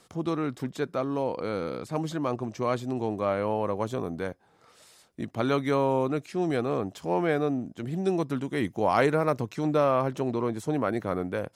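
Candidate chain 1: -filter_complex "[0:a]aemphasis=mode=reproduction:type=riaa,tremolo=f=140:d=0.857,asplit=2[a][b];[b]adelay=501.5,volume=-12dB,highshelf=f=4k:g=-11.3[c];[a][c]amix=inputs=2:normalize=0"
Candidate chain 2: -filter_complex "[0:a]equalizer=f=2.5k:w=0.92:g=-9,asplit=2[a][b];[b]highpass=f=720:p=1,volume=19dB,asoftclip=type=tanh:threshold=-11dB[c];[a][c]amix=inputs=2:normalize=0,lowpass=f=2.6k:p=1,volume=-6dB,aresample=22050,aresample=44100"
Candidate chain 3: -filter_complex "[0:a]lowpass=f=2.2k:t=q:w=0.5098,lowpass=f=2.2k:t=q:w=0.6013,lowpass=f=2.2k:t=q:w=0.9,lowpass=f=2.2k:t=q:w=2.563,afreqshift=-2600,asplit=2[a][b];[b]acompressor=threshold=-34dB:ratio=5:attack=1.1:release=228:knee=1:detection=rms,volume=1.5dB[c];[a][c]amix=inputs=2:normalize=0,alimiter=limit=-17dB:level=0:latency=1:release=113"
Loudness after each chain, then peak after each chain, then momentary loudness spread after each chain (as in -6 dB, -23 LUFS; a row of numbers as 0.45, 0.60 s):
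-27.5, -24.0, -25.5 LUFS; -8.5, -11.5, -17.0 dBFS; 7, 7, 4 LU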